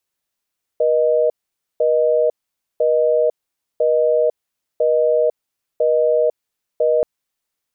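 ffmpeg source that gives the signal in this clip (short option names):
-f lavfi -i "aevalsrc='0.168*(sin(2*PI*480*t)+sin(2*PI*620*t))*clip(min(mod(t,1),0.5-mod(t,1))/0.005,0,1)':d=6.23:s=44100"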